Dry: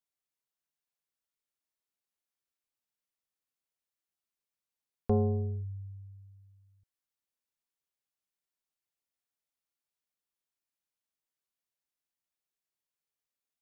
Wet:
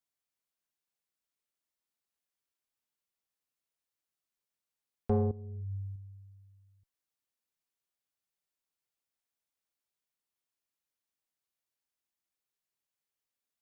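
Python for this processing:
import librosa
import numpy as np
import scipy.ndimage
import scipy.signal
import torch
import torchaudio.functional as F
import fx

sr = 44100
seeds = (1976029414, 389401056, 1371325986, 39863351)

y = fx.diode_clip(x, sr, knee_db=-20.5)
y = fx.over_compress(y, sr, threshold_db=-40.0, ratio=-1.0, at=(5.31, 5.96))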